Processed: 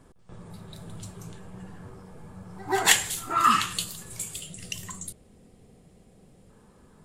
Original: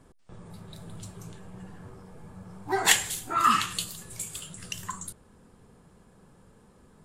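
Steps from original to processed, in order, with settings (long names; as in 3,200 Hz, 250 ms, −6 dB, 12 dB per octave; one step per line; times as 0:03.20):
echo ahead of the sound 133 ms −20 dB
gain on a spectral selection 0:04.34–0:06.49, 810–1,800 Hz −10 dB
level +1.5 dB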